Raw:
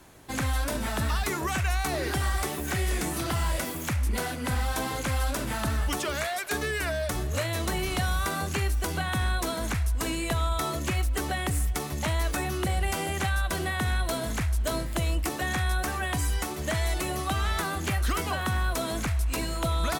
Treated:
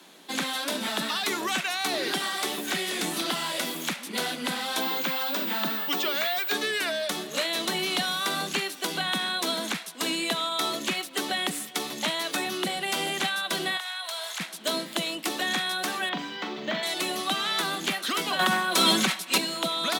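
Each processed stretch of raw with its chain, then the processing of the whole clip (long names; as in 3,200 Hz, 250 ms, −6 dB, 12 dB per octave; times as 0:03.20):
0:04.80–0:06.53: parametric band 11,000 Hz −8.5 dB 1.4 octaves + steady tone 16,000 Hz −29 dBFS
0:13.77–0:14.40: high-pass filter 710 Hz 24 dB per octave + downward compressor, threshold −33 dBFS
0:16.09–0:16.83: high-frequency loss of the air 200 metres + flutter between parallel walls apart 7.1 metres, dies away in 0.3 s + linearly interpolated sample-rate reduction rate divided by 2×
0:18.39–0:19.38: comb filter 5.3 ms, depth 78% + envelope flattener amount 100%
whole clip: Butterworth high-pass 170 Hz 72 dB per octave; parametric band 3,600 Hz +11 dB 0.89 octaves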